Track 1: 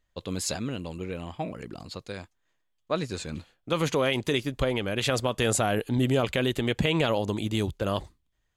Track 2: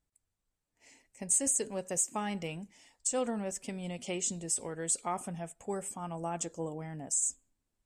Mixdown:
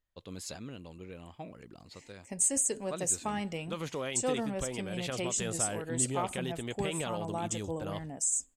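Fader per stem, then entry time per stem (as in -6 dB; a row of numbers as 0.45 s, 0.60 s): -11.5 dB, +0.5 dB; 0.00 s, 1.10 s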